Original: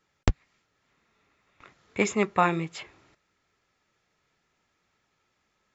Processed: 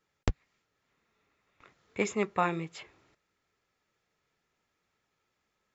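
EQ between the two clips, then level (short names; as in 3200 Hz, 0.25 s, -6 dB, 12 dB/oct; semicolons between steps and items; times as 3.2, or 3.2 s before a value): bell 460 Hz +3 dB 0.39 oct; -6.0 dB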